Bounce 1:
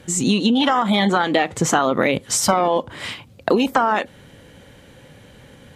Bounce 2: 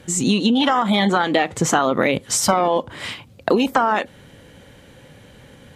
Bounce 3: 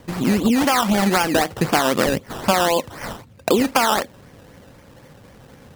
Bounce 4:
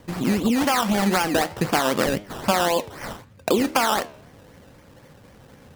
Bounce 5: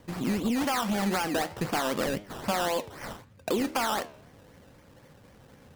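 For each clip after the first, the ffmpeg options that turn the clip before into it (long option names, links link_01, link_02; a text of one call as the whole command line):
ffmpeg -i in.wav -af anull out.wav
ffmpeg -i in.wav -filter_complex "[0:a]acrossover=split=2700[link_01][link_02];[link_02]acompressor=threshold=-29dB:ratio=4:attack=1:release=60[link_03];[link_01][link_03]amix=inputs=2:normalize=0,acrusher=samples=16:mix=1:aa=0.000001:lfo=1:lforange=9.6:lforate=3.9" out.wav
ffmpeg -i in.wav -af "flanger=delay=9.4:depth=5.4:regen=87:speed=1.8:shape=triangular,volume=1.5dB" out.wav
ffmpeg -i in.wav -af "asoftclip=type=tanh:threshold=-14dB,volume=-5.5dB" out.wav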